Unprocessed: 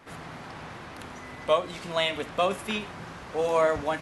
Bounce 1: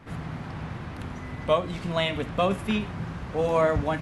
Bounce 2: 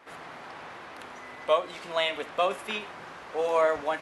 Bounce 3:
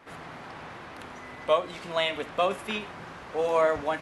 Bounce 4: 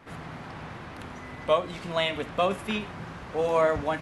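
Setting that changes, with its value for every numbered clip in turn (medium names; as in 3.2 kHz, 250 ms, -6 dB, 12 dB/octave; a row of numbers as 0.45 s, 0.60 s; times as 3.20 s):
tone controls, bass: +13 dB, -15 dB, -5 dB, +4 dB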